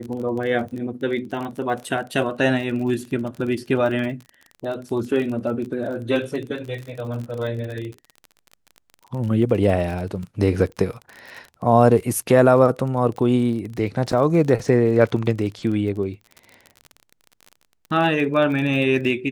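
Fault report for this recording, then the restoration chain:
crackle 32 per s -29 dBFS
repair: de-click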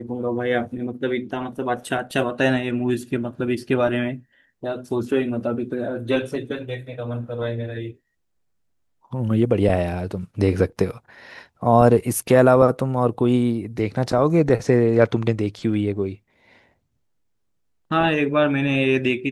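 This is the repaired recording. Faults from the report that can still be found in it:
nothing left

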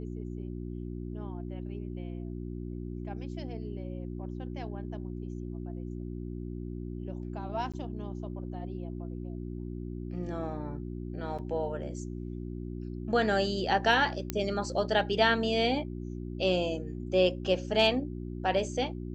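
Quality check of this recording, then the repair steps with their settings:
hum 60 Hz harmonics 6 -38 dBFS
7.72–7.74 s: dropout 16 ms
11.38–11.39 s: dropout 6.6 ms
14.30 s: pop -14 dBFS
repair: de-click; de-hum 60 Hz, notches 6; interpolate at 7.72 s, 16 ms; interpolate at 11.38 s, 6.6 ms

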